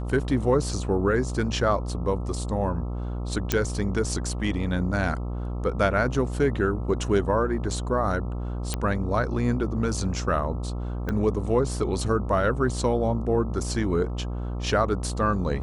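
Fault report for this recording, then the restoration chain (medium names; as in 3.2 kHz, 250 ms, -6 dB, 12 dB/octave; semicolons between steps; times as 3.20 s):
buzz 60 Hz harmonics 22 -30 dBFS
3.52 s: pop -7 dBFS
8.74 s: pop -12 dBFS
11.09 s: pop -17 dBFS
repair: de-click; de-hum 60 Hz, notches 22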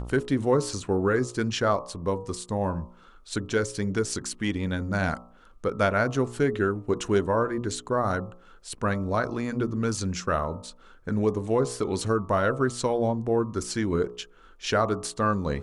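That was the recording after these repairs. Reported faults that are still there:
11.09 s: pop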